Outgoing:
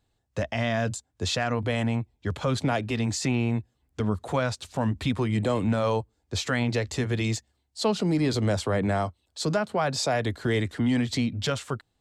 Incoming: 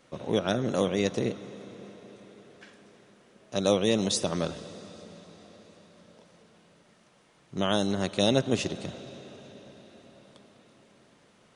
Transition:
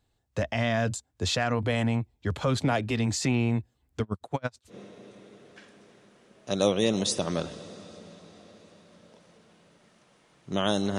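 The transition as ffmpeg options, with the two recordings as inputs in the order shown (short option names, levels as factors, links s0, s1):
-filter_complex "[0:a]asettb=1/sr,asplit=3[s0][s1][s2];[s0]atrim=end=4.024[s3];[s1]atrim=start=4.02:end=4.75,asetpts=PTS-STARTPTS,afade=t=in:d=0.004:c=qsin,afade=t=out:st=0.726:d=0.004:c=qsin,aeval=exprs='val(0)*pow(10,-38*(0.5-0.5*cos(2*PI*9.1*n/s))/20)':c=same[s4];[s2]atrim=start=4.746[s5];[s3][s4]acrossfade=d=0.004:c1=hsin:c2=qsin[s6];[s6][s5]acrossfade=d=0.004:c1=qsin:c2=hsin,apad=whole_dur=10.98,atrim=end=10.98,atrim=end=4.75,asetpts=PTS-STARTPTS[s7];[1:a]atrim=start=1.72:end=8.03,asetpts=PTS-STARTPTS[s8];[s7][s8]acrossfade=d=0.08:c1=tri:c2=tri"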